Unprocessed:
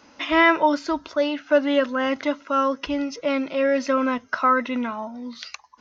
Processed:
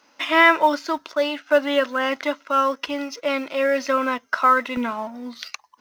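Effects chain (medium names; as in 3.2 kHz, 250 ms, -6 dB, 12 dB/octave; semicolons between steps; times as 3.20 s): companding laws mixed up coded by A; high-pass 580 Hz 6 dB/octave, from 4.77 s 180 Hz; trim +4 dB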